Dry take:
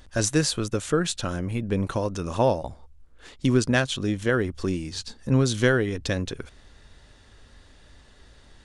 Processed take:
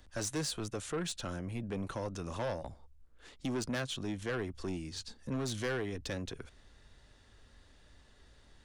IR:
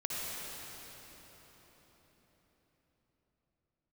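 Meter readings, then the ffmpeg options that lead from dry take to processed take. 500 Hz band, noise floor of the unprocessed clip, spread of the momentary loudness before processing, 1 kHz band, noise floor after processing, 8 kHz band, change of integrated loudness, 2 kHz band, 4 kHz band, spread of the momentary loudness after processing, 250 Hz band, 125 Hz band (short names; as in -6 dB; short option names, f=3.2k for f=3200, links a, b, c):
-13.0 dB, -53 dBFS, 9 LU, -12.5 dB, -62 dBFS, -11.0 dB, -13.0 dB, -13.5 dB, -10.5 dB, 8 LU, -13.0 dB, -14.5 dB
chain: -filter_complex "[0:a]acrossover=split=170|490|1900[a][b][c][d];[a]alimiter=level_in=4.5dB:limit=-24dB:level=0:latency=1,volume=-4.5dB[e];[e][b][c][d]amix=inputs=4:normalize=0,asoftclip=type=tanh:threshold=-21.5dB,volume=-8.5dB"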